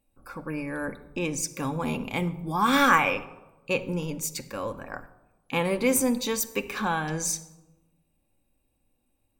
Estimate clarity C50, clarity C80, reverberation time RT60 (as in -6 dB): 16.0 dB, 17.5 dB, 1.1 s